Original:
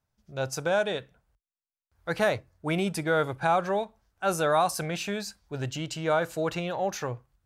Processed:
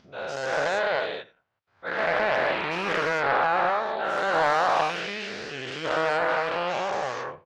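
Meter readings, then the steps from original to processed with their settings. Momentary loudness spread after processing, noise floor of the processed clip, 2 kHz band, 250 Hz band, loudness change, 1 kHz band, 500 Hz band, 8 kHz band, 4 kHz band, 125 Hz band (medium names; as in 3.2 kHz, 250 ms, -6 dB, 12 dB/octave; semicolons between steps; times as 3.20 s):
11 LU, -67 dBFS, +7.0 dB, -4.5 dB, +3.0 dB, +5.5 dB, +1.5 dB, -7.0 dB, +3.5 dB, -8.5 dB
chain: every event in the spectrogram widened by 480 ms; high-pass 940 Hz 6 dB/octave; treble shelf 5.1 kHz -5.5 dB; upward compressor, threshold -45 dBFS; distance through air 200 m; delay 86 ms -19 dB; loudspeaker Doppler distortion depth 0.29 ms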